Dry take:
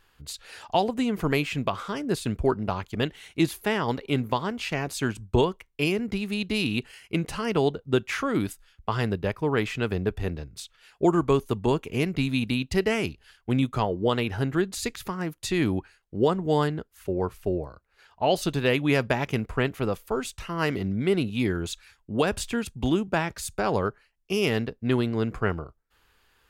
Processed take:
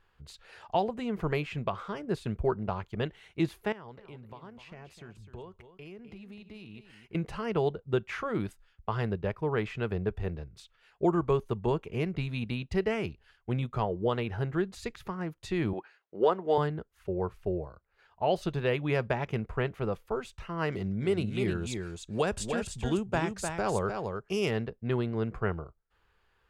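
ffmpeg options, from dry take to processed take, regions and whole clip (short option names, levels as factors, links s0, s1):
-filter_complex "[0:a]asettb=1/sr,asplit=3[s0][s1][s2];[s0]atrim=end=3.724[s3];[s1]atrim=start=3.72:end=7.15,asetpts=PTS-STARTPTS,afade=t=in:d=0.004:c=qsin,afade=t=out:st=3.426:d=0.004:c=qsin,acompressor=threshold=0.00708:ratio=3:attack=3.2:release=140:knee=1:detection=peak,aecho=1:1:255:0.282,atrim=end_sample=151263[s4];[s2]atrim=start=7.146[s5];[s3][s4]acrossfade=d=0.004:c1=hsin:c2=qsin[s6];[s6][s5]acrossfade=d=0.004:c1=qsin:c2=hsin,asettb=1/sr,asplit=3[s7][s8][s9];[s7]atrim=end=15.734[s10];[s8]atrim=start=15.73:end=16.58,asetpts=PTS-STARTPTS,afade=t=in:d=0.004:c=qsin,afade=t=out:st=0.846:d=0.004:c=qsin,acontrast=27,highpass=420,lowpass=5900[s11];[s9]atrim=start=16.576[s12];[s10][s11]acrossfade=d=0.004:c1=hsin:c2=qsin[s13];[s13][s12]acrossfade=d=0.004:c1=qsin:c2=hsin,asettb=1/sr,asplit=3[s14][s15][s16];[s14]atrim=end=20.724[s17];[s15]atrim=start=20.72:end=24.51,asetpts=PTS-STARTPTS,afade=t=in:d=0.004:c=qsin,afade=t=out:st=3.786:d=0.004:c=qsin,equalizer=f=7900:t=o:w=1.2:g=13.5,aecho=1:1:303:0.531,atrim=end_sample=167139[s18];[s16]atrim=start=24.506[s19];[s17][s18]acrossfade=d=0.004:c1=hsin:c2=qsin[s20];[s20][s19]acrossfade=d=0.004:c1=qsin:c2=hsin,lowpass=f=1700:p=1,equalizer=f=270:t=o:w=0.2:g=-14,volume=0.668"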